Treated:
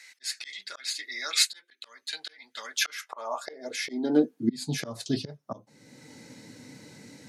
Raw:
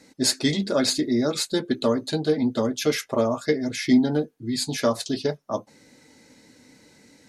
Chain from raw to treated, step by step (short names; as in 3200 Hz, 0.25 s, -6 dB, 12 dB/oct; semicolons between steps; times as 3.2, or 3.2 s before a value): auto swell 0.605 s; high-pass sweep 2000 Hz -> 120 Hz, 2.61–4.88; gain +3.5 dB